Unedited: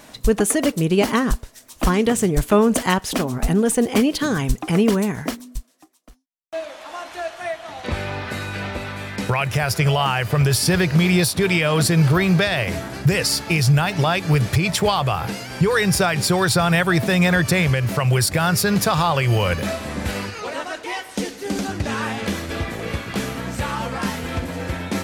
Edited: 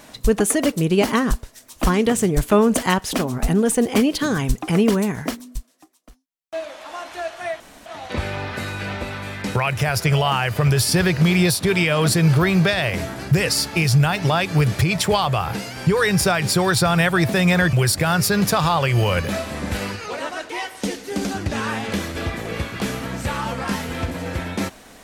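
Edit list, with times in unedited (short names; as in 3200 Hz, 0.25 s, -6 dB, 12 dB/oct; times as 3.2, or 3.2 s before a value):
7.6 insert room tone 0.26 s
17.47–18.07 cut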